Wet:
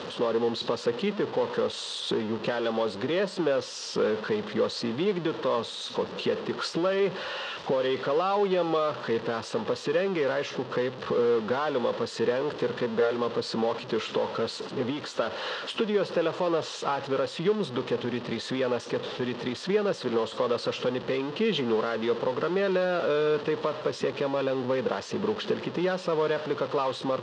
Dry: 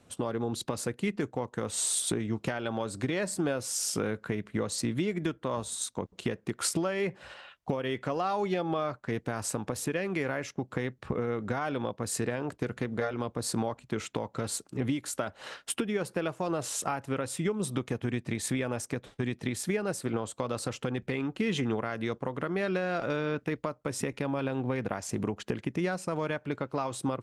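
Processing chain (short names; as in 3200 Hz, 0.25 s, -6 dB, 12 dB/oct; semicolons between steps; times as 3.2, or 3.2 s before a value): zero-crossing step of -31 dBFS; speaker cabinet 260–4200 Hz, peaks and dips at 290 Hz -8 dB, 470 Hz +4 dB, 710 Hz -7 dB, 1500 Hz -4 dB, 2200 Hz -10 dB; gain +4.5 dB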